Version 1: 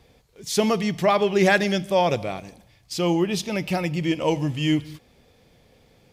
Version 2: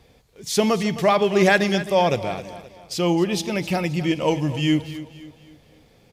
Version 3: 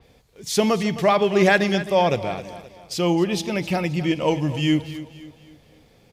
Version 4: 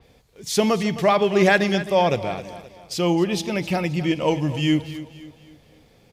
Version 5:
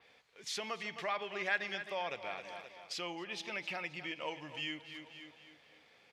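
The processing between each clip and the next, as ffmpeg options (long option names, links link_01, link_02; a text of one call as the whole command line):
ffmpeg -i in.wav -af "aecho=1:1:262|524|786|1048:0.188|0.0772|0.0317|0.013,volume=1.5dB" out.wav
ffmpeg -i in.wav -af "adynamicequalizer=threshold=0.0112:dfrequency=4800:dqfactor=0.7:tfrequency=4800:tqfactor=0.7:attack=5:release=100:ratio=0.375:range=2:mode=cutabove:tftype=highshelf" out.wav
ffmpeg -i in.wav -af anull out.wav
ffmpeg -i in.wav -af "acompressor=threshold=-32dB:ratio=2.5,bandpass=frequency=2000:width_type=q:width=1:csg=0" out.wav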